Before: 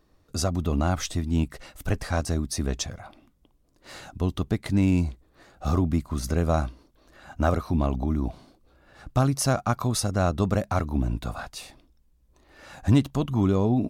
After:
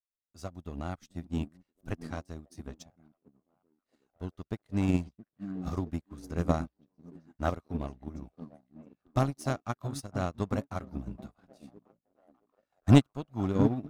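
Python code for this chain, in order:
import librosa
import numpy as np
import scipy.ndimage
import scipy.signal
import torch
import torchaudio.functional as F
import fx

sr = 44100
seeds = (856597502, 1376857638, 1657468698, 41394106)

p1 = fx.echo_stepped(x, sr, ms=670, hz=210.0, octaves=0.7, feedback_pct=70, wet_db=-0.5)
p2 = 10.0 ** (-24.0 / 20.0) * np.tanh(p1 / 10.0 ** (-24.0 / 20.0))
p3 = p1 + F.gain(torch.from_numpy(p2), -12.0).numpy()
p4 = fx.power_curve(p3, sr, exponent=1.4)
p5 = fx.upward_expand(p4, sr, threshold_db=-40.0, expansion=2.5)
y = F.gain(torch.from_numpy(p5), 3.0).numpy()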